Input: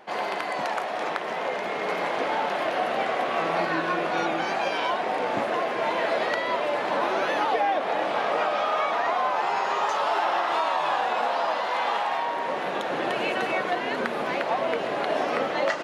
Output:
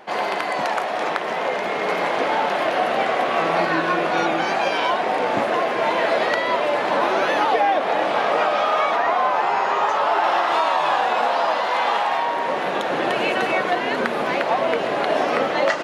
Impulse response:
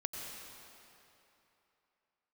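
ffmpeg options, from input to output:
-filter_complex "[0:a]asettb=1/sr,asplit=3[link_01][link_02][link_03];[link_01]atrim=end=8.964[link_04];[link_02]atrim=start=8.96:end=10.24,asetpts=PTS-STARTPTS,afade=type=in:duration=0.004:curve=qsin,afade=type=out:start_time=1.276:duration=0.004:curve=qsin,acrossover=split=2800[link_05][link_06];[link_06]acompressor=threshold=-45dB:ratio=4:attack=1:release=60[link_07];[link_05][link_07]amix=inputs=2:normalize=0[link_08];[link_03]atrim=start=10.236[link_09];[link_04][link_08]acrossfade=duration=0.004:curve1=hsin:curve2=qsin[link_10];[link_10][link_09]acrossfade=duration=0.004:curve1=qsin:curve2=hsin,volume=5.5dB"

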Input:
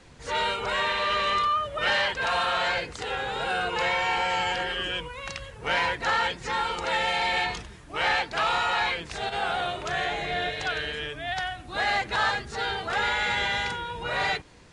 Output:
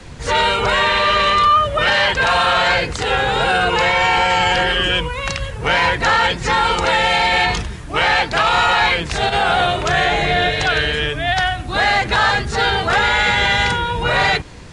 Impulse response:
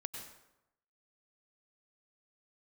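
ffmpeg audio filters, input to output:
-filter_complex "[0:a]acrossover=split=180|1200|4500[link_01][link_02][link_03][link_04];[link_01]acontrast=33[link_05];[link_05][link_02][link_03][link_04]amix=inputs=4:normalize=0,alimiter=level_in=18.5dB:limit=-1dB:release=50:level=0:latency=1,volume=-5.5dB"

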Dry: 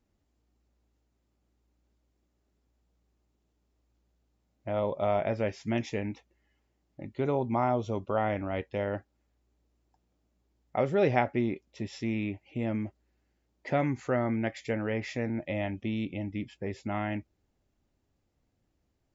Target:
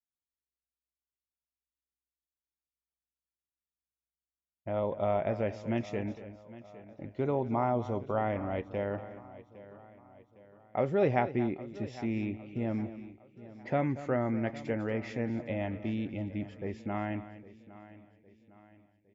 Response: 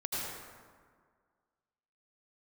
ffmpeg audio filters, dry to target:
-filter_complex "[0:a]highshelf=frequency=2700:gain=-8.5,asplit=2[link_01][link_02];[link_02]aecho=0:1:236:0.188[link_03];[link_01][link_03]amix=inputs=2:normalize=0,agate=range=-33dB:threshold=-52dB:ratio=3:detection=peak,asplit=2[link_04][link_05];[link_05]aecho=0:1:809|1618|2427|3236:0.133|0.0613|0.0282|0.013[link_06];[link_04][link_06]amix=inputs=2:normalize=0,volume=-1.5dB"

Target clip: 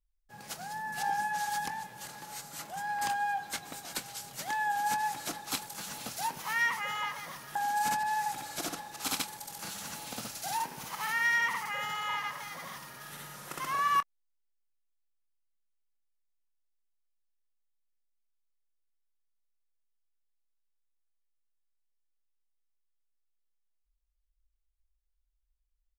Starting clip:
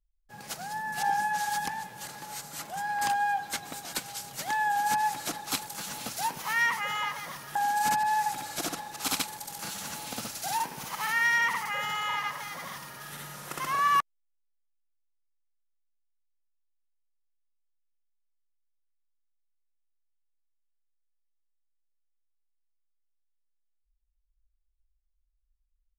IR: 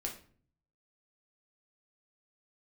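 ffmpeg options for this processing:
-filter_complex "[0:a]asplit=2[link_01][link_02];[link_02]adelay=24,volume=-14dB[link_03];[link_01][link_03]amix=inputs=2:normalize=0,volume=-3.5dB"

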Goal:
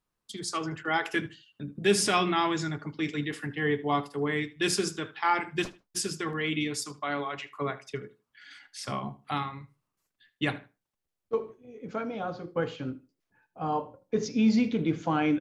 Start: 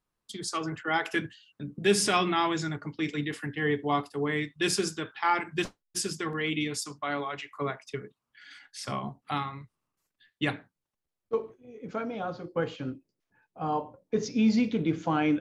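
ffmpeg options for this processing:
ffmpeg -i in.wav -filter_complex "[0:a]asplit=2[link_01][link_02];[link_02]adelay=77,lowpass=frequency=4900:poles=1,volume=-18dB,asplit=2[link_03][link_04];[link_04]adelay=77,lowpass=frequency=4900:poles=1,volume=0.23[link_05];[link_01][link_03][link_05]amix=inputs=3:normalize=0" out.wav

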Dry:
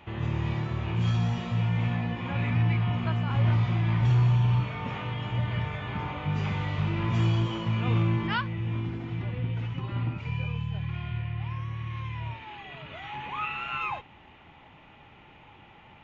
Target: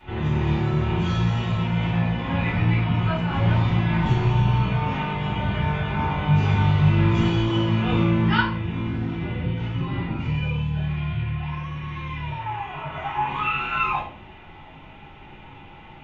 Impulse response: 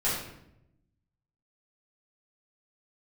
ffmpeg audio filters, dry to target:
-filter_complex "[0:a]asettb=1/sr,asplit=3[link_01][link_02][link_03];[link_01]atrim=end=12.384[link_04];[link_02]atrim=start=12.38:end=13.27,asetpts=PTS-STARTPTS,afade=type=in:duration=0.004:curve=qsin,afade=type=out:start_time=0.886:duration=0.004:curve=qsin,equalizer=frequency=250:width_type=o:width=0.67:gain=-5,equalizer=frequency=1000:width_type=o:width=0.67:gain=11,equalizer=frequency=4000:width_type=o:width=0.67:gain=-9[link_05];[link_03]atrim=start=13.266[link_06];[link_04][link_05]acrossfade=duration=0.004:curve1=hsin:curve2=qsin[link_07];[link_07][link_06]acrossfade=duration=0.004:curve1=qsin:curve2=hsin[link_08];[1:a]atrim=start_sample=2205,asetrate=83790,aresample=44100[link_09];[link_08][link_09]afir=irnorm=-1:irlink=0,volume=2dB"

